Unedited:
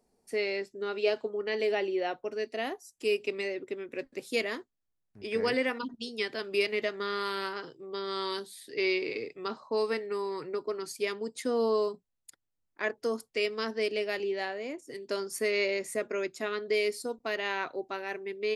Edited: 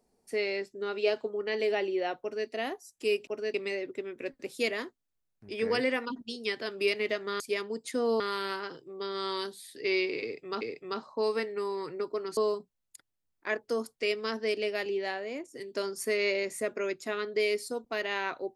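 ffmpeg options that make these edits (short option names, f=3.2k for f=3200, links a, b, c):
-filter_complex "[0:a]asplit=7[a][b][c][d][e][f][g];[a]atrim=end=3.272[h];[b]atrim=start=2.208:end=2.482[i];[c]atrim=start=3.268:end=7.132[j];[d]atrim=start=10.908:end=11.712[k];[e]atrim=start=7.128:end=9.542[l];[f]atrim=start=9.148:end=10.912[m];[g]atrim=start=11.708[n];[h][i]acrossfade=d=0.004:c1=hsin:c2=hsin[o];[o][j]acrossfade=d=0.004:c1=hsin:c2=hsin[p];[p][k]acrossfade=d=0.004:c1=hsin:c2=hsin[q];[q][l]acrossfade=d=0.004:c1=hsin:c2=hsin[r];[r][m]acrossfade=d=0.004:c1=hsin:c2=hsin[s];[s][n]acrossfade=d=0.004:c1=hsin:c2=hsin"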